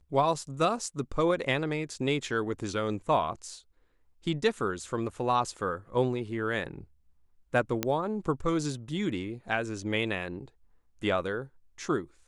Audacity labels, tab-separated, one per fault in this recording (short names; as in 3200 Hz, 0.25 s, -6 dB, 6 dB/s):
7.830000	7.830000	pop -11 dBFS